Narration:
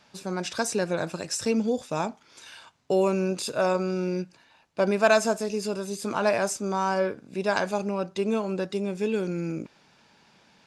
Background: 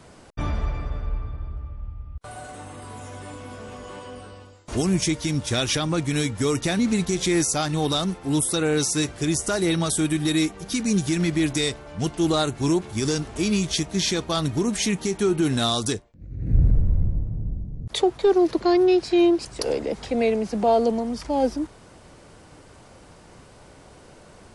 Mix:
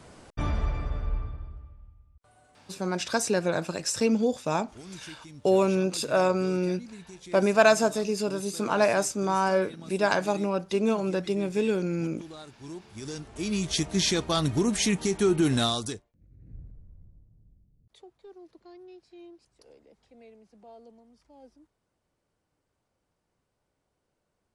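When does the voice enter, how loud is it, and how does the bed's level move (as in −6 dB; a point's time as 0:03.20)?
2.55 s, +1.0 dB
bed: 0:01.20 −2 dB
0:02.13 −22.5 dB
0:12.54 −22.5 dB
0:13.85 −1.5 dB
0:15.60 −1.5 dB
0:16.74 −31 dB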